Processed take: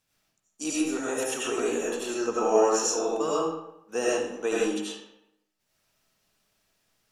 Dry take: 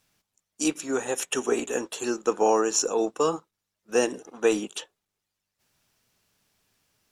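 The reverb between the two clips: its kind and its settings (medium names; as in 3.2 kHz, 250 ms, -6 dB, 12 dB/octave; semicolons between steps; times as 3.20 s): algorithmic reverb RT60 0.8 s, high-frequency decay 0.75×, pre-delay 50 ms, DRR -6.5 dB; trim -7.5 dB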